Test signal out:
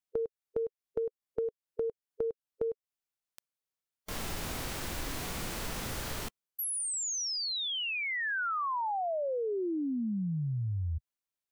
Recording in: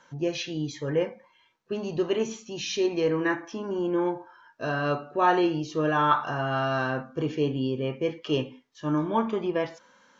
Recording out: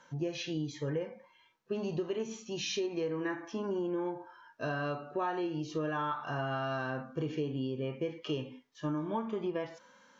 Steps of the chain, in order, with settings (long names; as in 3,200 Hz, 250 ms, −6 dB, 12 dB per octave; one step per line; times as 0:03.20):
harmonic and percussive parts rebalanced harmonic +6 dB
downward compressor 12 to 1, threshold −24 dBFS
level −6.5 dB